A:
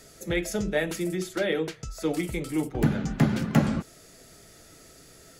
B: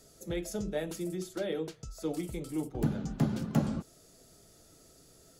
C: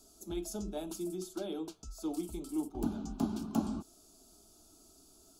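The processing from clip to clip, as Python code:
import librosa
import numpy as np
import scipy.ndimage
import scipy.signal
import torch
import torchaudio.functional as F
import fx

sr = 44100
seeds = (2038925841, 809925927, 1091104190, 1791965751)

y1 = fx.peak_eq(x, sr, hz=2000.0, db=-9.5, octaves=1.1)
y1 = y1 * librosa.db_to_amplitude(-6.5)
y2 = fx.fixed_phaser(y1, sr, hz=510.0, stages=6)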